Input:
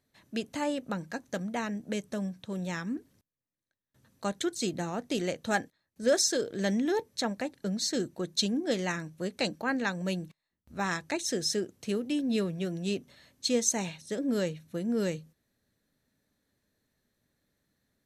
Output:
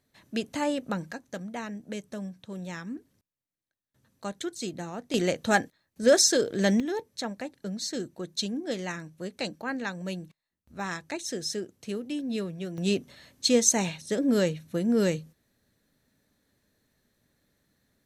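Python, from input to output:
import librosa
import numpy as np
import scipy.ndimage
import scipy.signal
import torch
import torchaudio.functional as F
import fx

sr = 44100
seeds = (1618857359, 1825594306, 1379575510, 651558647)

y = fx.gain(x, sr, db=fx.steps((0.0, 3.0), (1.13, -3.0), (5.14, 5.5), (6.8, -2.5), (12.78, 5.5)))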